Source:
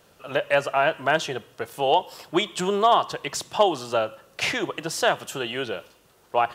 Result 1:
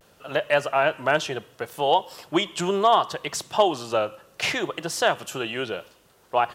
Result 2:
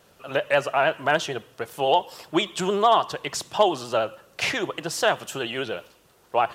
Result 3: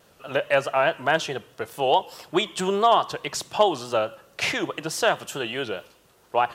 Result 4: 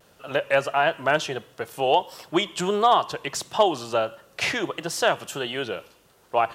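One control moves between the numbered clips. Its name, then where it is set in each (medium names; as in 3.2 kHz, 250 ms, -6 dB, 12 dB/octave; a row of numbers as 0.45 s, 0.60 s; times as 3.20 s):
vibrato, rate: 0.69 Hz, 13 Hz, 4.7 Hz, 1.5 Hz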